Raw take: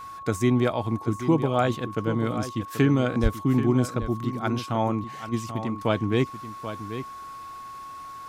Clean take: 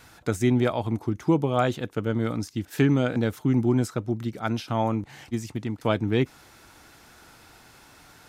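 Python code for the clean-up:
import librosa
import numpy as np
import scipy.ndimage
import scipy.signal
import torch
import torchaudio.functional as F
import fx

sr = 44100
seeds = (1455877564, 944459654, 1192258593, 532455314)

y = fx.notch(x, sr, hz=1100.0, q=30.0)
y = fx.highpass(y, sr, hz=140.0, slope=24, at=(3.22, 3.34), fade=0.02)
y = fx.fix_echo_inverse(y, sr, delay_ms=784, level_db=-11.0)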